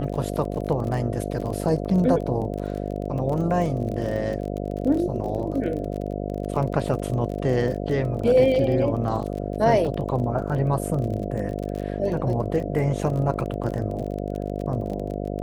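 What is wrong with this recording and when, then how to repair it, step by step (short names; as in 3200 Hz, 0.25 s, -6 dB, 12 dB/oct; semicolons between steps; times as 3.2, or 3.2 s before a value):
buzz 50 Hz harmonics 14 -29 dBFS
crackle 28/s -30 dBFS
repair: de-click; de-hum 50 Hz, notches 14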